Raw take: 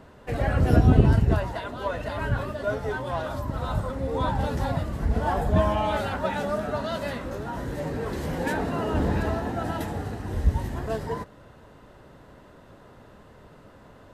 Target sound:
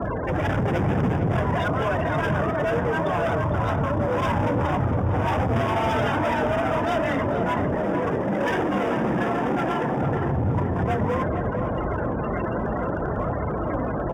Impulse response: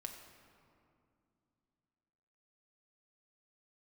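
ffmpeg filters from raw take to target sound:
-filter_complex "[0:a]aeval=exprs='val(0)+0.5*0.075*sgn(val(0))':channel_layout=same,asettb=1/sr,asplit=3[link_01][link_02][link_03];[link_01]atrim=end=7.754[link_04];[link_02]atrim=start=7.75:end=10.01,asetpts=PTS-STARTPTS,afade=type=in:duration=0.004:curve=qsin,afade=type=out:start_time=2.256:duration=0.004:curve=qsin,highpass=frequency=98:width=0.5412,highpass=frequency=98:width=1.3066[link_05];[link_03]atrim=start=10.006[link_06];[link_04][link_05]acrossfade=duration=0.004:curve1=hsin:curve2=qsin[link_07];[link_07][link_06]acrossfade=duration=0.004:curve1=qsin:curve2=hsin,afftfilt=real='re*gte(hypot(re,im),0.0631)':imag='im*gte(hypot(re,im),0.0631)':win_size=1024:overlap=0.75,flanger=delay=1.3:depth=5.2:regen=55:speed=0.6:shape=triangular,volume=28.5dB,asoftclip=hard,volume=-28.5dB,afreqshift=41,asuperstop=centerf=4200:order=4:qfactor=3.2,asplit=2[link_08][link_09];[link_09]adelay=456,lowpass=frequency=1900:poles=1,volume=-6dB,asplit=2[link_10][link_11];[link_11]adelay=456,lowpass=frequency=1900:poles=1,volume=0.52,asplit=2[link_12][link_13];[link_13]adelay=456,lowpass=frequency=1900:poles=1,volume=0.52,asplit=2[link_14][link_15];[link_15]adelay=456,lowpass=frequency=1900:poles=1,volume=0.52,asplit=2[link_16][link_17];[link_17]adelay=456,lowpass=frequency=1900:poles=1,volume=0.52,asplit=2[link_18][link_19];[link_19]adelay=456,lowpass=frequency=1900:poles=1,volume=0.52[link_20];[link_08][link_10][link_12][link_14][link_16][link_18][link_20]amix=inputs=7:normalize=0,volume=6.5dB"

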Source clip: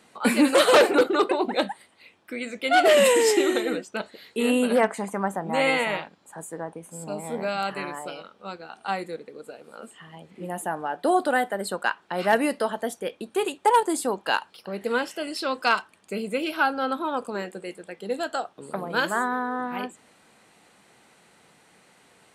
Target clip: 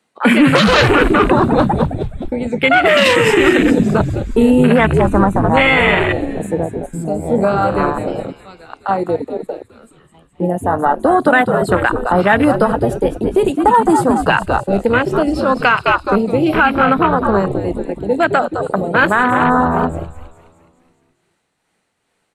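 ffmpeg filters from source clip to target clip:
ffmpeg -i in.wav -filter_complex "[0:a]agate=range=-12dB:threshold=-43dB:ratio=16:detection=peak,tremolo=f=2.3:d=0.48,asplit=2[link_01][link_02];[link_02]asoftclip=type=hard:threshold=-15.5dB,volume=-5dB[link_03];[link_01][link_03]amix=inputs=2:normalize=0,asplit=8[link_04][link_05][link_06][link_07][link_08][link_09][link_10][link_11];[link_05]adelay=209,afreqshift=-85,volume=-8dB[link_12];[link_06]adelay=418,afreqshift=-170,volume=-12.6dB[link_13];[link_07]adelay=627,afreqshift=-255,volume=-17.2dB[link_14];[link_08]adelay=836,afreqshift=-340,volume=-21.7dB[link_15];[link_09]adelay=1045,afreqshift=-425,volume=-26.3dB[link_16];[link_10]adelay=1254,afreqshift=-510,volume=-30.9dB[link_17];[link_11]adelay=1463,afreqshift=-595,volume=-35.5dB[link_18];[link_04][link_12][link_13][link_14][link_15][link_16][link_17][link_18]amix=inputs=8:normalize=0,acrossover=split=270|980[link_19][link_20][link_21];[link_20]acompressor=threshold=-29dB:ratio=6[link_22];[link_19][link_22][link_21]amix=inputs=3:normalize=0,afwtdn=0.0447,alimiter=level_in=16dB:limit=-1dB:release=50:level=0:latency=1,volume=-1dB" out.wav

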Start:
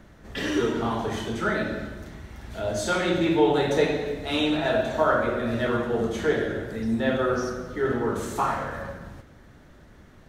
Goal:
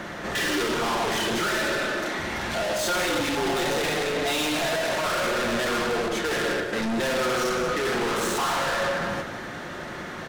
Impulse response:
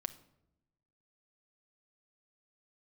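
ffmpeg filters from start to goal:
-filter_complex "[0:a]asettb=1/sr,asplit=3[link_01][link_02][link_03];[link_01]atrim=end=1.504[link_04];[link_02]atrim=start=1.5:end=2.19,asetpts=PTS-STARTPTS,afade=type=in:duration=0.004:curve=qsin,afade=type=out:start_time=0.686:duration=0.004:curve=qsin,highpass=frequency=240:width=0.5412,highpass=frequency=240:width=1.3066[link_05];[link_03]atrim=start=2.186[link_06];[link_04][link_05]acrossfade=duration=0.004:curve1=hsin:curve2=qsin[link_07];[link_07][link_06]acrossfade=duration=0.004:curve1=qsin:curve2=hsin,asplit=3[link_08][link_09][link_10];[link_08]afade=type=out:start_time=3.09:duration=0.02[link_11];[link_09]afreqshift=-46,afade=type=in:start_time=3.09:duration=0.02,afade=type=out:start_time=3.64:duration=0.02[link_12];[link_10]afade=type=in:start_time=3.64:duration=0.02[link_13];[link_11][link_12][link_13]amix=inputs=3:normalize=0,asettb=1/sr,asplit=3[link_14][link_15][link_16];[link_14]atrim=end=6.084[link_17];[link_15]atrim=start=6.08:end=6.73,asetpts=PTS-STARTPTS,afade=type=in:duration=0.004:curve=qsin,afade=type=out:start_time=0.646:duration=0.004:curve=qsin,agate=range=-14dB:threshold=-28dB:ratio=16:detection=peak[link_18];[link_16]atrim=start=6.726[link_19];[link_17][link_18]acrossfade=duration=0.004:curve1=hsin:curve2=qsin[link_20];[link_20][link_19]acrossfade=duration=0.004:curve1=qsin:curve2=hsin,asplit=2[link_21][link_22];[link_22]highpass=frequency=720:poles=1,volume=31dB,asoftclip=type=tanh:threshold=-8dB[link_23];[link_21][link_23]amix=inputs=2:normalize=0,lowpass=frequency=4400:poles=1,volume=-6dB,asoftclip=type=tanh:threshold=-23.5dB,aecho=1:1:182:0.299[link_24];[1:a]atrim=start_sample=2205[link_25];[link_24][link_25]afir=irnorm=-1:irlink=0"

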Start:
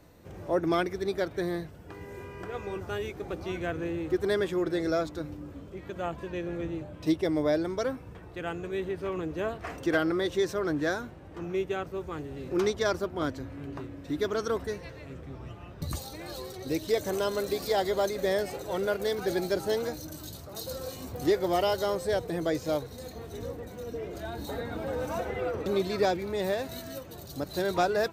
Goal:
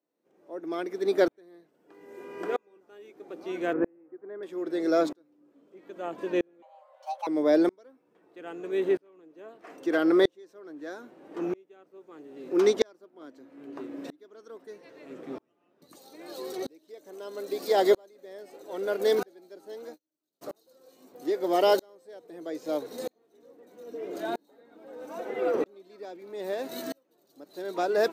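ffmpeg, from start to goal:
ffmpeg -i in.wav -filter_complex "[0:a]asettb=1/sr,asplit=3[link_01][link_02][link_03];[link_01]atrim=end=3.734[link_04];[link_02]atrim=start=3.73:end=4.43,asetpts=PTS-STARTPTS,afade=type=in:duration=0.004:curve=qsin,afade=type=out:start_time=0.696:duration=0.004:curve=qsin,lowpass=frequency=1800:width=0.5412,lowpass=frequency=1800:width=1.3066[link_05];[link_03]atrim=start=4.426[link_06];[link_04][link_05]acrossfade=duration=0.004:curve1=hsin:curve2=qsin[link_07];[link_07][link_06]acrossfade=duration=0.004:curve1=qsin:curve2=hsin,asettb=1/sr,asplit=3[link_08][link_09][link_10];[link_08]atrim=end=6.624[link_11];[link_09]atrim=start=6.62:end=7.27,asetpts=PTS-STARTPTS,afade=type=in:duration=0.004:curve=qsin,afade=type=out:start_time=0.646:duration=0.004:curve=qsin,afreqshift=460[link_12];[link_10]atrim=start=7.266[link_13];[link_11][link_12]acrossfade=duration=0.004:curve1=hsin:curve2=qsin[link_14];[link_14][link_13]acrossfade=duration=0.004:curve1=qsin:curve2=hsin,highpass=frequency=280:width=0.5412,highpass=frequency=280:width=1.3066,asplit=3[link_15][link_16][link_17];[link_15]afade=type=out:start_time=19.84:duration=0.02[link_18];[link_16]agate=range=-46dB:threshold=-34dB:ratio=16:detection=peak,afade=type=in:start_time=19.84:duration=0.02,afade=type=out:start_time=20.41:duration=0.02[link_19];[link_17]afade=type=in:start_time=20.41:duration=0.02[link_20];[link_18][link_19][link_20]amix=inputs=3:normalize=0,lowshelf=frequency=430:gain=10.5,aeval=exprs='val(0)*pow(10,-38*if(lt(mod(-0.78*n/s,1),2*abs(-0.78)/1000),1-mod(-0.78*n/s,1)/(2*abs(-0.78)/1000),(mod(-0.78*n/s,1)-2*abs(-0.78)/1000)/(1-2*abs(-0.78)/1000))/20)':channel_layout=same,volume=5.5dB" out.wav

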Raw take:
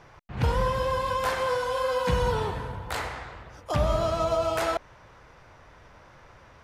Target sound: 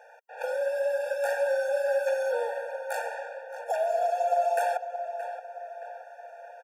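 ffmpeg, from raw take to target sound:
ffmpeg -i in.wav -filter_complex "[0:a]equalizer=frequency=3800:width_type=o:width=1.1:gain=-12.5,asplit=2[link_01][link_02];[link_02]acompressor=threshold=-33dB:ratio=6,volume=-2dB[link_03];[link_01][link_03]amix=inputs=2:normalize=0,afreqshift=42,asplit=2[link_04][link_05];[link_05]adelay=622,lowpass=frequency=2500:poles=1,volume=-9.5dB,asplit=2[link_06][link_07];[link_07]adelay=622,lowpass=frequency=2500:poles=1,volume=0.53,asplit=2[link_08][link_09];[link_09]adelay=622,lowpass=frequency=2500:poles=1,volume=0.53,asplit=2[link_10][link_11];[link_11]adelay=622,lowpass=frequency=2500:poles=1,volume=0.53,asplit=2[link_12][link_13];[link_13]adelay=622,lowpass=frequency=2500:poles=1,volume=0.53,asplit=2[link_14][link_15];[link_15]adelay=622,lowpass=frequency=2500:poles=1,volume=0.53[link_16];[link_04][link_06][link_08][link_10][link_12][link_14][link_16]amix=inputs=7:normalize=0,afftfilt=real='re*eq(mod(floor(b*sr/1024/470),2),1)':imag='im*eq(mod(floor(b*sr/1024/470),2),1)':win_size=1024:overlap=0.75" out.wav

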